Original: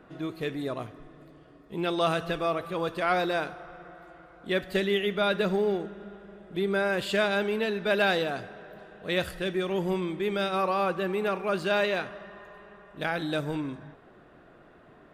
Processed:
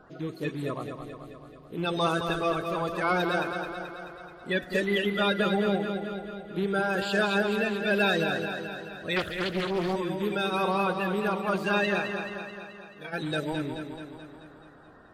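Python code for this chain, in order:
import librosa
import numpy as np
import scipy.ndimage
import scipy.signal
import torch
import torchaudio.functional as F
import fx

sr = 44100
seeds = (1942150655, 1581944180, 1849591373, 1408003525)

y = fx.spec_quant(x, sr, step_db=30)
y = fx.stiff_resonator(y, sr, f0_hz=140.0, decay_s=0.22, stiffness=0.03, at=(12.37, 13.12), fade=0.02)
y = fx.echo_feedback(y, sr, ms=216, feedback_pct=60, wet_db=-7)
y = fx.doppler_dist(y, sr, depth_ms=0.53, at=(9.16, 9.96))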